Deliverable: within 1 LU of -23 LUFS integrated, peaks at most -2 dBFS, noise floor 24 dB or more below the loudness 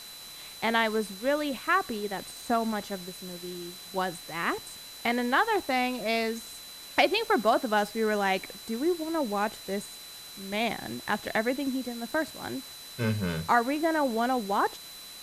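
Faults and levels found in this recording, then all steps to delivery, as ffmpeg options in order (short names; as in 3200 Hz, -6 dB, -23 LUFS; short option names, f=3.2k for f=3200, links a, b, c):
steady tone 4000 Hz; tone level -45 dBFS; noise floor -45 dBFS; noise floor target -53 dBFS; loudness -29.0 LUFS; peak -9.5 dBFS; loudness target -23.0 LUFS
-> -af "bandreject=f=4k:w=30"
-af "afftdn=nr=8:nf=-45"
-af "volume=6dB"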